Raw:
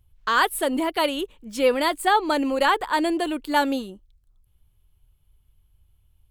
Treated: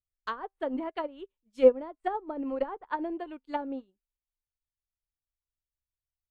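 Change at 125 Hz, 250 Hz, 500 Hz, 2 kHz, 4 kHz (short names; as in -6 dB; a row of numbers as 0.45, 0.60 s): n/a, -9.5 dB, -3.5 dB, -18.5 dB, -23.0 dB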